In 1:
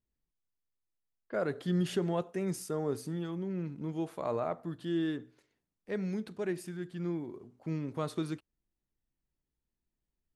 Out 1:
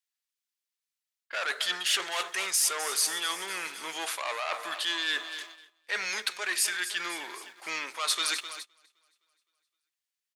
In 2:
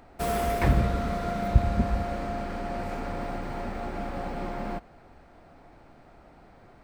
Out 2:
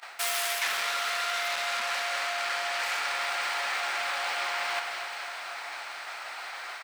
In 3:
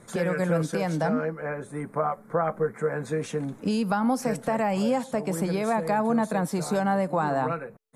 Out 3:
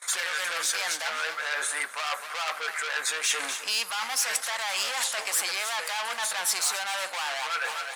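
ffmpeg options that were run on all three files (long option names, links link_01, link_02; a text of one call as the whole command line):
ffmpeg -i in.wav -filter_complex "[0:a]asplit=2[link_01][link_02];[link_02]highpass=frequency=720:poles=1,volume=31dB,asoftclip=type=tanh:threshold=-6dB[link_03];[link_01][link_03]amix=inputs=2:normalize=0,lowpass=frequency=7100:poles=1,volume=-6dB,aecho=1:1:258|516|774|1032|1290|1548:0.178|0.103|0.0598|0.0347|0.0201|0.0117,agate=range=-21dB:threshold=-34dB:ratio=16:detection=peak,highpass=1100,areverse,acompressor=threshold=-28dB:ratio=6,areverse,tiltshelf=frequency=1500:gain=-6" out.wav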